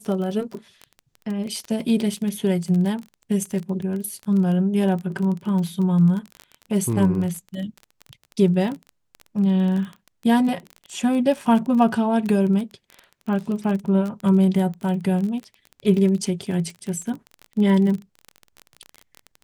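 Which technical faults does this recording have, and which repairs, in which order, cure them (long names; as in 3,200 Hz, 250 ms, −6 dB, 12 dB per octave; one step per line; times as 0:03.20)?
surface crackle 23 per second −27 dBFS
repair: click removal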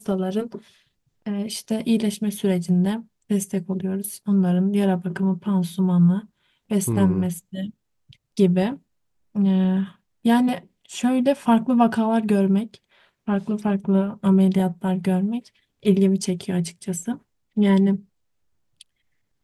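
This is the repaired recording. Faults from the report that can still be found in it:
none of them is left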